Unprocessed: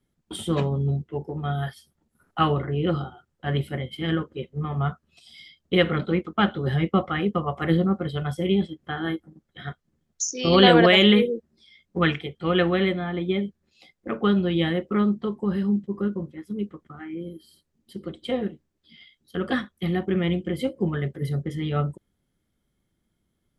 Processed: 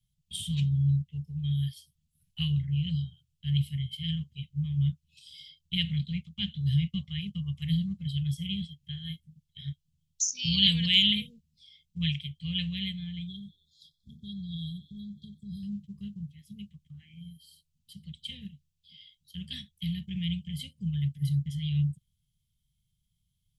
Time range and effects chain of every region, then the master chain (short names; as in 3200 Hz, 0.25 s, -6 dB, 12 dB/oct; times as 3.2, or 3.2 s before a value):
13.27–15.63 frequency-shifting echo 92 ms, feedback 59%, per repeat +96 Hz, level -24 dB + compressor 2.5:1, threshold -26 dBFS + brick-wall FIR band-stop 440–3200 Hz
whole clip: elliptic band-stop 150–2900 Hz, stop band 40 dB; bell 1100 Hz +2 dB 0.36 oct